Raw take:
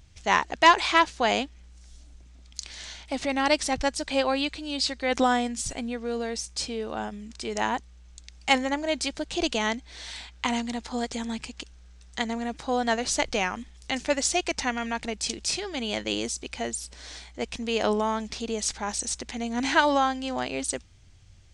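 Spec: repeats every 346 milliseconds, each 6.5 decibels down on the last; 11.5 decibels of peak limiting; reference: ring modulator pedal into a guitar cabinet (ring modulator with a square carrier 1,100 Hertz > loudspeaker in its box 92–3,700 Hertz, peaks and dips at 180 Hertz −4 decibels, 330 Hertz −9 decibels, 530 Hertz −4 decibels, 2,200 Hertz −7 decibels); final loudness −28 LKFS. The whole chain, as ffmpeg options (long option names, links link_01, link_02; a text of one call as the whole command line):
ffmpeg -i in.wav -af "alimiter=limit=-18dB:level=0:latency=1,aecho=1:1:346|692|1038|1384|1730|2076:0.473|0.222|0.105|0.0491|0.0231|0.0109,aeval=exprs='val(0)*sgn(sin(2*PI*1100*n/s))':channel_layout=same,highpass=92,equalizer=frequency=180:width_type=q:width=4:gain=-4,equalizer=frequency=330:width_type=q:width=4:gain=-9,equalizer=frequency=530:width_type=q:width=4:gain=-4,equalizer=frequency=2200:width_type=q:width=4:gain=-7,lowpass=frequency=3700:width=0.5412,lowpass=frequency=3700:width=1.3066,volume=3.5dB" out.wav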